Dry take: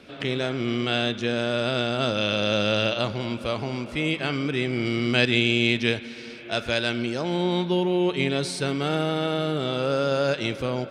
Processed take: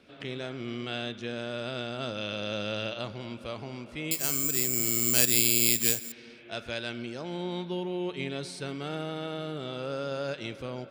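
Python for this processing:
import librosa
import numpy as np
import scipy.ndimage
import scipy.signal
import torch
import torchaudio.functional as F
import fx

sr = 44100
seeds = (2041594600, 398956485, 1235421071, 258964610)

y = fx.resample_bad(x, sr, factor=6, down='none', up='zero_stuff', at=(4.11, 6.12))
y = y * librosa.db_to_amplitude(-10.0)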